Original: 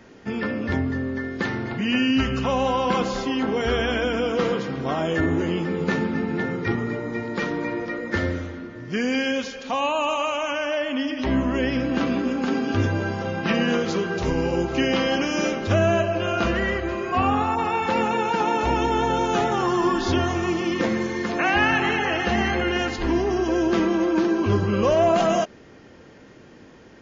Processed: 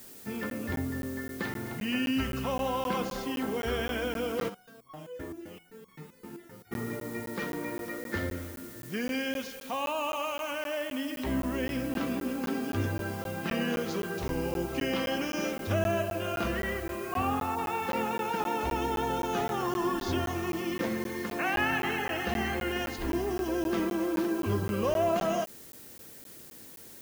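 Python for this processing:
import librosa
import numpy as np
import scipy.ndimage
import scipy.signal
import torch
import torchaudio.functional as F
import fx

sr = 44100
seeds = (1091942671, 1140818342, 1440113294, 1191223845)

y = fx.dmg_noise_colour(x, sr, seeds[0], colour='blue', level_db=-41.0)
y = fx.buffer_crackle(y, sr, first_s=0.5, period_s=0.26, block=512, kind='zero')
y = fx.resonator_held(y, sr, hz=7.7, low_hz=69.0, high_hz=1100.0, at=(4.48, 6.71), fade=0.02)
y = y * librosa.db_to_amplitude(-8.5)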